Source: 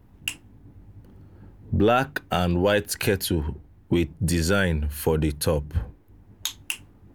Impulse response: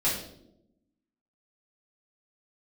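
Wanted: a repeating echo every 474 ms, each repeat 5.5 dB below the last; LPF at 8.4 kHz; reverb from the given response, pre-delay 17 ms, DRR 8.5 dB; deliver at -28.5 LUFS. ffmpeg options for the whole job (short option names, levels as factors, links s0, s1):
-filter_complex "[0:a]lowpass=8400,aecho=1:1:474|948|1422|1896|2370|2844|3318:0.531|0.281|0.149|0.079|0.0419|0.0222|0.0118,asplit=2[s0][s1];[1:a]atrim=start_sample=2205,adelay=17[s2];[s1][s2]afir=irnorm=-1:irlink=0,volume=0.119[s3];[s0][s3]amix=inputs=2:normalize=0,volume=0.531"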